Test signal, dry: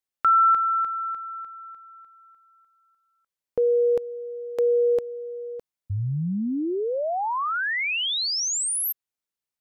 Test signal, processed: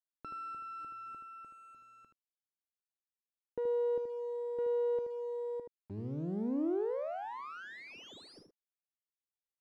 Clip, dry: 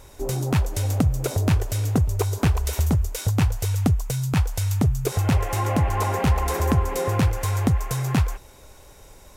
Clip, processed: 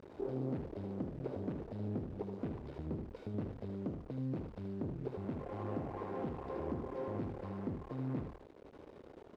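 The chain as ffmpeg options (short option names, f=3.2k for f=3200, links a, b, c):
-af "acompressor=threshold=-22dB:ratio=5:attack=0.84:release=669:knee=6:detection=rms,aresample=11025,asoftclip=type=tanh:threshold=-26dB,aresample=44100,acrusher=bits=5:dc=4:mix=0:aa=0.000001,bandpass=f=330:t=q:w=1.3:csg=0,aecho=1:1:77:0.473,volume=3dB"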